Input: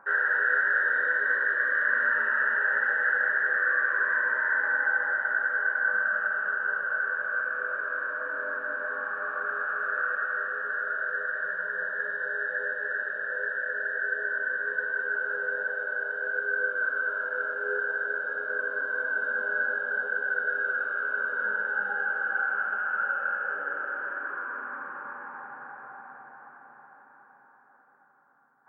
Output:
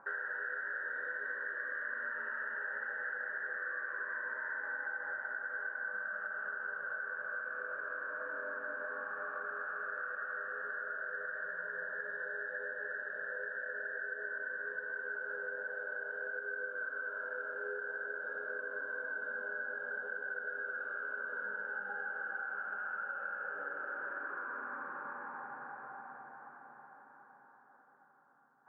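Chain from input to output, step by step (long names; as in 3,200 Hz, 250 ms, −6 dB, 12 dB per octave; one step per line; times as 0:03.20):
high-shelf EQ 2,300 Hz −11.5 dB
downward compressor 5 to 1, threshold −36 dBFS, peak gain reduction 11 dB
level −1.5 dB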